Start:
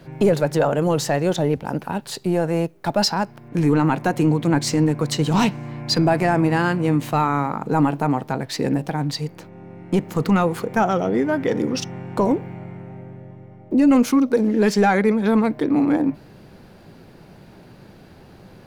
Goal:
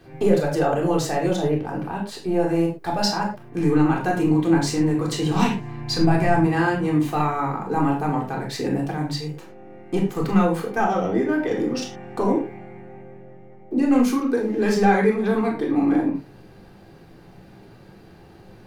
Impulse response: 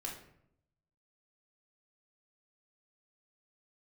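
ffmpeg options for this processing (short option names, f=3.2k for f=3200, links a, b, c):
-filter_complex "[0:a]asettb=1/sr,asplit=3[a][b][c];[a]atrim=end=1.504[d];[b]atrim=start=1.5:end=2.4,asetpts=PTS-STARTPTS,afade=t=in:d=0.004:c=qsin,afade=t=out:st=0.896:d=0.004:c=qsin,highshelf=f=5.6k:g=-7[e];[c]atrim=start=2.396[f];[d][e]acrossfade=d=0.004:c1=hsin:c2=qsin[g];[g][f]acrossfade=d=0.004:c1=qsin:c2=hsin[h];[1:a]atrim=start_sample=2205,afade=t=out:st=0.17:d=0.01,atrim=end_sample=7938[i];[h][i]afir=irnorm=-1:irlink=0,asettb=1/sr,asplit=3[j][k][l];[j]atrim=end=5.424[m];[k]atrim=start=5.42:end=6.47,asetpts=PTS-STARTPTS,afade=t=in:d=0.004:c=qsin,afade=t=out:st=1.046:d=0.004:c=qsin,asubboost=boost=8.5:cutoff=170[n];[l]atrim=start=6.466[o];[m][n]acrossfade=d=0.004:c1=hsin:c2=qsin[p];[p][o]acrossfade=d=0.004:c1=qsin:c2=hsin,volume=-1dB"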